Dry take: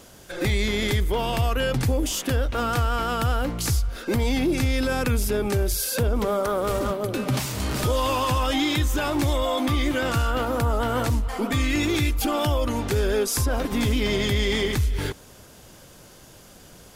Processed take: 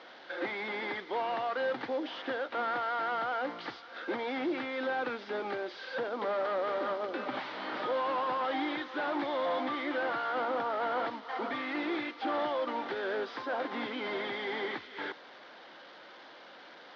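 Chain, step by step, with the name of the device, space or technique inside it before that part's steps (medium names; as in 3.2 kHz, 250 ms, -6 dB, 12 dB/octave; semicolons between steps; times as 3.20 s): digital answering machine (band-pass 320–3100 Hz; one-bit delta coder 32 kbps, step -41.5 dBFS; cabinet simulation 380–3900 Hz, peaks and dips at 420 Hz -8 dB, 620 Hz -4 dB, 1.1 kHz -3 dB, 2.6 kHz -8 dB)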